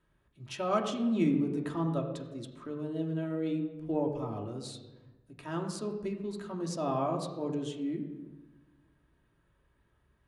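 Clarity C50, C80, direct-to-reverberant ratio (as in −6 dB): 8.0 dB, 9.0 dB, 1.0 dB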